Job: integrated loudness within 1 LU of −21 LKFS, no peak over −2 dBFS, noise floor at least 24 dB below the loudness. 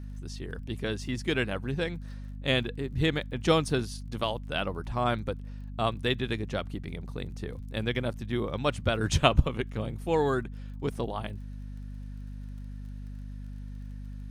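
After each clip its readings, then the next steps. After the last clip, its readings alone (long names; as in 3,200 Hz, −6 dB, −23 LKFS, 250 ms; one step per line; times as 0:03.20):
crackle rate 31 per second; mains hum 50 Hz; hum harmonics up to 250 Hz; level of the hum −36 dBFS; integrated loudness −30.5 LKFS; sample peak −6.5 dBFS; target loudness −21.0 LKFS
→ click removal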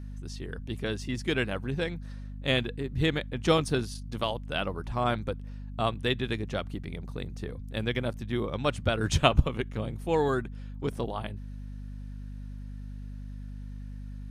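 crackle rate 0.14 per second; mains hum 50 Hz; hum harmonics up to 250 Hz; level of the hum −37 dBFS
→ mains-hum notches 50/100/150/200/250 Hz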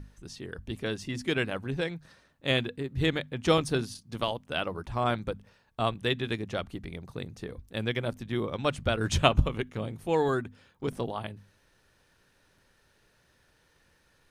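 mains hum none found; integrated loudness −31.0 LKFS; sample peak −7.0 dBFS; target loudness −21.0 LKFS
→ level +10 dB
brickwall limiter −2 dBFS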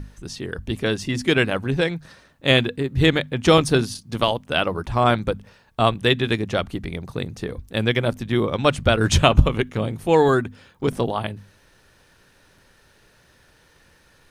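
integrated loudness −21.0 LKFS; sample peak −2.0 dBFS; background noise floor −57 dBFS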